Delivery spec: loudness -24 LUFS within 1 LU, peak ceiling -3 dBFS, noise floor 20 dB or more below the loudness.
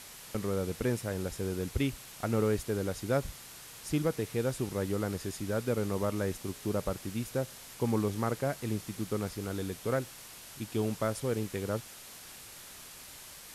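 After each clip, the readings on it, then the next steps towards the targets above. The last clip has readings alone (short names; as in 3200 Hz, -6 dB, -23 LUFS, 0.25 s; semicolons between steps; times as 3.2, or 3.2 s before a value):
noise floor -49 dBFS; noise floor target -54 dBFS; loudness -34.0 LUFS; peak -17.0 dBFS; loudness target -24.0 LUFS
-> noise print and reduce 6 dB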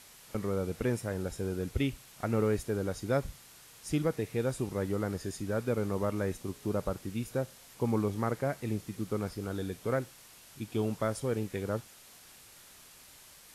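noise floor -55 dBFS; loudness -34.0 LUFS; peak -17.0 dBFS; loudness target -24.0 LUFS
-> gain +10 dB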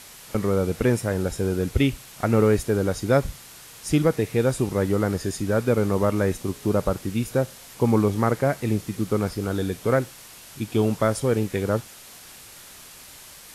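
loudness -24.0 LUFS; peak -7.0 dBFS; noise floor -45 dBFS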